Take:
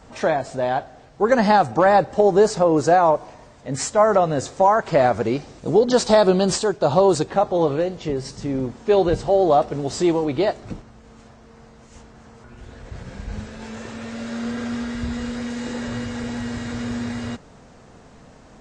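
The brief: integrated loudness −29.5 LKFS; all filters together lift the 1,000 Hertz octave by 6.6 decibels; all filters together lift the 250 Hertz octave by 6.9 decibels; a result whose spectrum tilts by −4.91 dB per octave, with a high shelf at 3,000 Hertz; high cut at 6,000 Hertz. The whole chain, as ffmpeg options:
ffmpeg -i in.wav -af "lowpass=6000,equalizer=frequency=250:width_type=o:gain=8.5,equalizer=frequency=1000:width_type=o:gain=7.5,highshelf=frequency=3000:gain=8,volume=-14.5dB" out.wav

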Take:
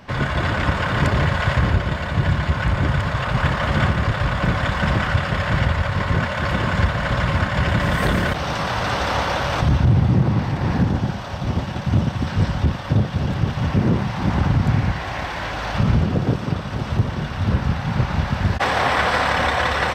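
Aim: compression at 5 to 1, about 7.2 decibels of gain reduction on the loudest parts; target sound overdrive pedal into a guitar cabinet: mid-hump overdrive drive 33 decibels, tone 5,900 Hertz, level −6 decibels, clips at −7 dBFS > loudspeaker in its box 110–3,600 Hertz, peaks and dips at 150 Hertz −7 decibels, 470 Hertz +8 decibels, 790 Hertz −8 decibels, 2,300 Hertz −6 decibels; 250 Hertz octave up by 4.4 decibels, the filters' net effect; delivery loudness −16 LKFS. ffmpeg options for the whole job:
ffmpeg -i in.wav -filter_complex "[0:a]equalizer=frequency=250:width_type=o:gain=8,acompressor=threshold=-17dB:ratio=5,asplit=2[link_01][link_02];[link_02]highpass=frequency=720:poles=1,volume=33dB,asoftclip=type=tanh:threshold=-7dB[link_03];[link_01][link_03]amix=inputs=2:normalize=0,lowpass=frequency=5900:poles=1,volume=-6dB,highpass=110,equalizer=frequency=150:width_type=q:width=4:gain=-7,equalizer=frequency=470:width_type=q:width=4:gain=8,equalizer=frequency=790:width_type=q:width=4:gain=-8,equalizer=frequency=2300:width_type=q:width=4:gain=-6,lowpass=frequency=3600:width=0.5412,lowpass=frequency=3600:width=1.3066,volume=-1dB" out.wav

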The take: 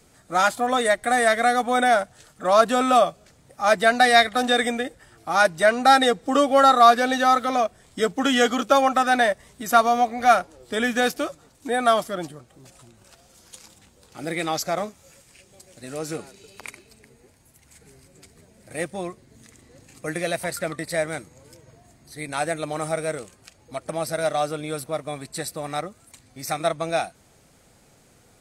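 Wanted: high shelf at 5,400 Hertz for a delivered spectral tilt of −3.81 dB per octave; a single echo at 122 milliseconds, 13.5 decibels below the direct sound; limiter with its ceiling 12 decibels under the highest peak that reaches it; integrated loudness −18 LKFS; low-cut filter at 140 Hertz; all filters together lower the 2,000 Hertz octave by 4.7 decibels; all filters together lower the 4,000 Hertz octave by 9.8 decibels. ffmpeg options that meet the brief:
ffmpeg -i in.wav -af "highpass=140,equalizer=frequency=2000:width_type=o:gain=-4,equalizer=frequency=4000:width_type=o:gain=-8,highshelf=frequency=5400:gain=-6.5,alimiter=limit=-16.5dB:level=0:latency=1,aecho=1:1:122:0.211,volume=9.5dB" out.wav

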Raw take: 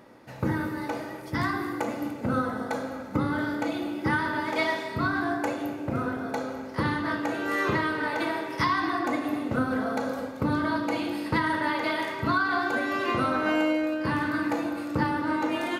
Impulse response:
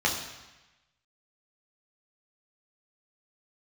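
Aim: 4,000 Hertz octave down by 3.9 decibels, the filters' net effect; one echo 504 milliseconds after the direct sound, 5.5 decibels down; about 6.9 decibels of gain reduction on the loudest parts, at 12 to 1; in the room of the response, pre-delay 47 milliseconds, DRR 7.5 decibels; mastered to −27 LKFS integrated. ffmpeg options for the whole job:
-filter_complex "[0:a]equalizer=frequency=4000:width_type=o:gain=-5,acompressor=threshold=-28dB:ratio=12,aecho=1:1:504:0.531,asplit=2[link_01][link_02];[1:a]atrim=start_sample=2205,adelay=47[link_03];[link_02][link_03]afir=irnorm=-1:irlink=0,volume=-20dB[link_04];[link_01][link_04]amix=inputs=2:normalize=0,volume=3.5dB"

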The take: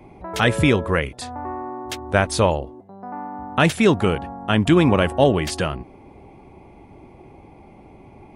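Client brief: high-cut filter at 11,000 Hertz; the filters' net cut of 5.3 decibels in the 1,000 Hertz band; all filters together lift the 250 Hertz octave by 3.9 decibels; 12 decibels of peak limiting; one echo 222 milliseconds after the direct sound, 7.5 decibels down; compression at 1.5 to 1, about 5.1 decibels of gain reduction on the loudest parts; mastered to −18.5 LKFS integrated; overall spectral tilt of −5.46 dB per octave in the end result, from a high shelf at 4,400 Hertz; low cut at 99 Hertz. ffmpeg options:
ffmpeg -i in.wav -af "highpass=99,lowpass=11000,equalizer=frequency=250:width_type=o:gain=6,equalizer=frequency=1000:width_type=o:gain=-7.5,highshelf=frequency=4400:gain=-6,acompressor=threshold=-23dB:ratio=1.5,alimiter=limit=-19dB:level=0:latency=1,aecho=1:1:222:0.422,volume=11.5dB" out.wav

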